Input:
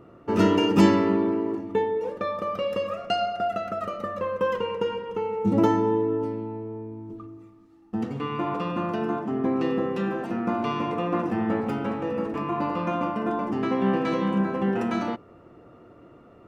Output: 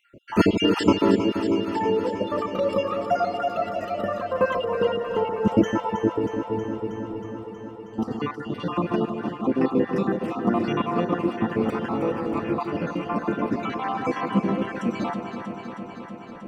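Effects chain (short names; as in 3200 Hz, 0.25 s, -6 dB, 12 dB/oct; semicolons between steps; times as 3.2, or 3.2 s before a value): random spectral dropouts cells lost 60%; echo with dull and thin repeats by turns 0.159 s, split 820 Hz, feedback 87%, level -7 dB; gain +4.5 dB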